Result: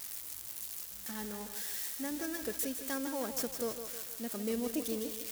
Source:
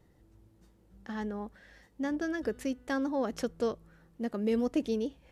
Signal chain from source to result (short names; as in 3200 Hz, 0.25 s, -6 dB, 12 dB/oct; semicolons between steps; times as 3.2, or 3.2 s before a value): switching spikes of -27 dBFS; high shelf 4700 Hz +6.5 dB; thinning echo 0.157 s, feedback 56%, high-pass 250 Hz, level -8 dB; gain -6.5 dB